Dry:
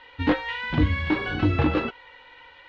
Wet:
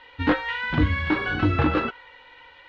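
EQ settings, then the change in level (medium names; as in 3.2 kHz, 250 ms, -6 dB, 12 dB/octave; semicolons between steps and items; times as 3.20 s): dynamic bell 1.4 kHz, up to +6 dB, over -46 dBFS, Q 2; 0.0 dB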